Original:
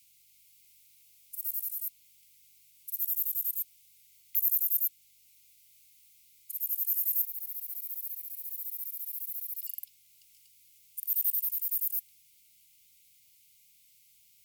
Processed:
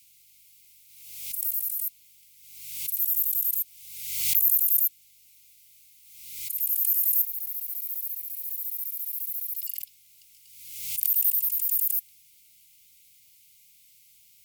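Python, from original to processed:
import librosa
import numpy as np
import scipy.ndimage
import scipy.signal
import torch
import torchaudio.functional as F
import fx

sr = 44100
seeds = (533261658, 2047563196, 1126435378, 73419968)

y = fx.pre_swell(x, sr, db_per_s=50.0)
y = y * librosa.db_to_amplitude(5.0)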